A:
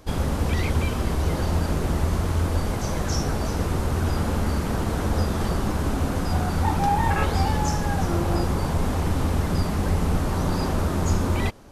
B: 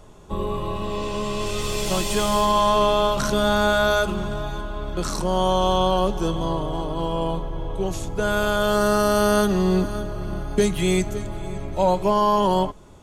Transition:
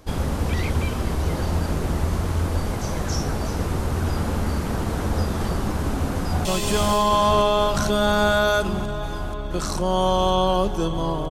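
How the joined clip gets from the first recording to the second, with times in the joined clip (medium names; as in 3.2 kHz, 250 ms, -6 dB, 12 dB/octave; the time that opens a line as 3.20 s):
A
6.14–6.45 s: echo throw 480 ms, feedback 85%, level -3.5 dB
6.45 s: go over to B from 1.88 s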